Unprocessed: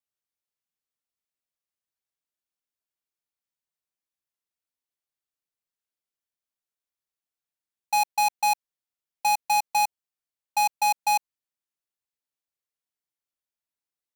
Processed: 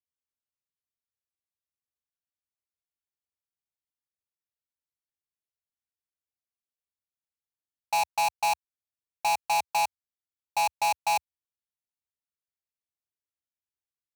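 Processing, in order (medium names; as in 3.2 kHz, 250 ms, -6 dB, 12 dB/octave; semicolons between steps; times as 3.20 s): peaking EQ 78 Hz +14 dB 1.4 oct; waveshaping leveller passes 3; loudspeaker Doppler distortion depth 0.18 ms; trim -4.5 dB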